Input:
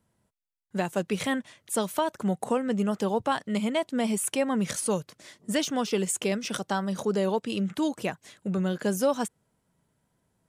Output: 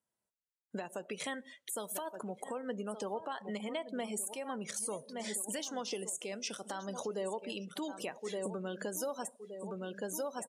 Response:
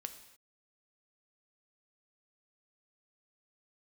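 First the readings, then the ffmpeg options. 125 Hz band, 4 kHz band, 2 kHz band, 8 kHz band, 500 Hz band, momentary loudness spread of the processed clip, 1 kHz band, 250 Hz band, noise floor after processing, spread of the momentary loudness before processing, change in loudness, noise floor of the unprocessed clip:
-16.0 dB, -8.5 dB, -10.0 dB, -6.0 dB, -10.0 dB, 5 LU, -10.5 dB, -14.5 dB, under -85 dBFS, 6 LU, -11.0 dB, -75 dBFS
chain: -filter_complex "[0:a]aecho=1:1:1169|2338|3507:0.2|0.0599|0.018,acompressor=threshold=-39dB:ratio=8,bass=f=250:g=-13,treble=f=4k:g=5,deesser=0.65,asplit=2[a][b];[1:a]atrim=start_sample=2205[c];[b][c]afir=irnorm=-1:irlink=0,volume=0dB[d];[a][d]amix=inputs=2:normalize=0,afftdn=nr=23:nf=-48,alimiter=level_in=6.5dB:limit=-24dB:level=0:latency=1:release=180,volume=-6.5dB,volume=3dB"

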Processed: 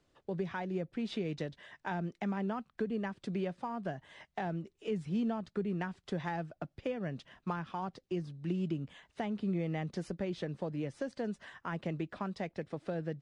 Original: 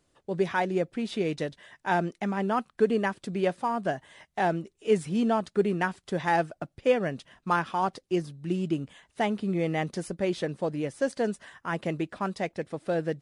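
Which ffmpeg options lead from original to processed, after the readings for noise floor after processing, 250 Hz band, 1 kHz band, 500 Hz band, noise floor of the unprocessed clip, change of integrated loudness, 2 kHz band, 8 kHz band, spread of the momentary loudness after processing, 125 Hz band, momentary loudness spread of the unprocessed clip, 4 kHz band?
-78 dBFS, -6.5 dB, -12.0 dB, -11.0 dB, -74 dBFS, -9.0 dB, -11.5 dB, under -10 dB, 6 LU, -4.0 dB, 8 LU, -9.0 dB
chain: -filter_complex "[0:a]acrossover=split=190[a][b];[b]acompressor=threshold=-34dB:ratio=6[c];[a][c]amix=inputs=2:normalize=0,lowpass=5.5k,volume=-2dB"

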